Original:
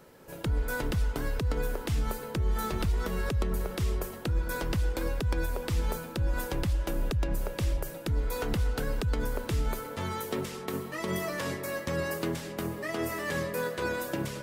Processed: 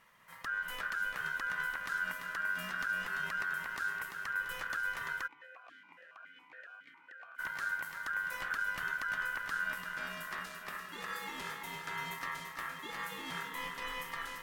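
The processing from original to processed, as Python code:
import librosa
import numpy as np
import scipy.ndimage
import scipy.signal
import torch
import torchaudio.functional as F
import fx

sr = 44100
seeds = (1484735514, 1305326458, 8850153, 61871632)

y = x * np.sin(2.0 * np.pi * 1500.0 * np.arange(len(x)) / sr)
y = fx.echo_feedback(y, sr, ms=341, feedback_pct=54, wet_db=-7)
y = fx.vowel_held(y, sr, hz=7.2, at=(5.26, 7.38), fade=0.02)
y = F.gain(torch.from_numpy(y), -7.0).numpy()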